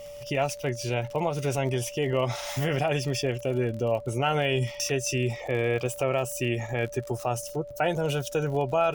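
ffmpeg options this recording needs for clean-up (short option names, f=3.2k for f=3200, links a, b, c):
-af "adeclick=t=4,bandreject=f=48.5:t=h:w=4,bandreject=f=97:t=h:w=4,bandreject=f=145.5:t=h:w=4,bandreject=f=580:w=30,agate=range=-21dB:threshold=-32dB"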